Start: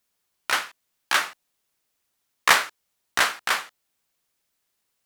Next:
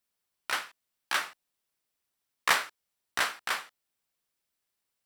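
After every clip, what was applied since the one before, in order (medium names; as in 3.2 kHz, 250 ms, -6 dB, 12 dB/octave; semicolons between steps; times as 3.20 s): band-stop 6.6 kHz, Q 17; trim -7.5 dB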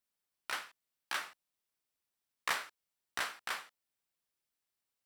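compression 1.5:1, threshold -31 dBFS, peak gain reduction 5 dB; trim -5.5 dB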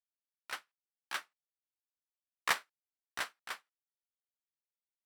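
upward expansion 2.5:1, over -53 dBFS; trim +5 dB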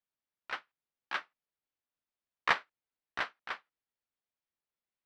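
distance through air 240 m; trim +5.5 dB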